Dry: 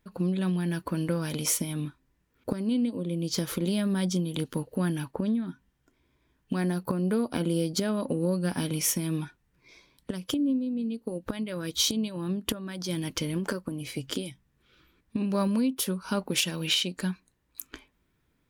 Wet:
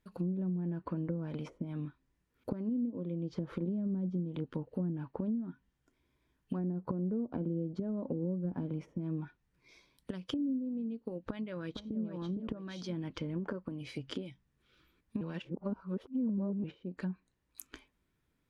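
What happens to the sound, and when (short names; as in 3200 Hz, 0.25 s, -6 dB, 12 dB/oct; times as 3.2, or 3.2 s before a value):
11.29–12.01 echo throw 0.46 s, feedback 25%, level -6 dB
15.21–16.64 reverse
whole clip: treble ducked by the level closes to 390 Hz, closed at -23.5 dBFS; gain -6.5 dB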